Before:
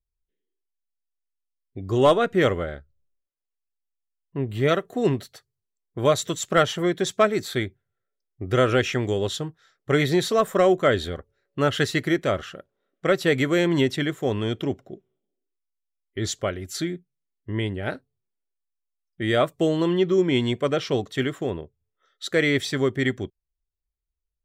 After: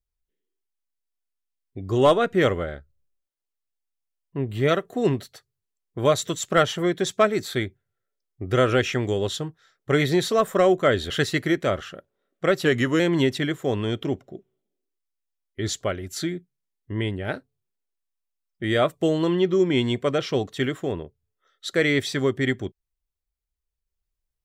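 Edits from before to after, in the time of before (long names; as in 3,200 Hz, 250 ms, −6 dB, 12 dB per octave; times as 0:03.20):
0:11.10–0:11.71: remove
0:13.26–0:13.58: play speed 92%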